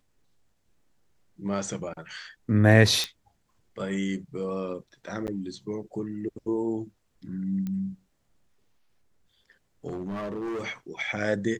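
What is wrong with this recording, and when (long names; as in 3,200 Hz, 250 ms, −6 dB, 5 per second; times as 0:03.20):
0:03.04: click
0:05.27–0:05.28: drop-out 9.4 ms
0:07.67: click −22 dBFS
0:09.87–0:10.64: clipping −29.5 dBFS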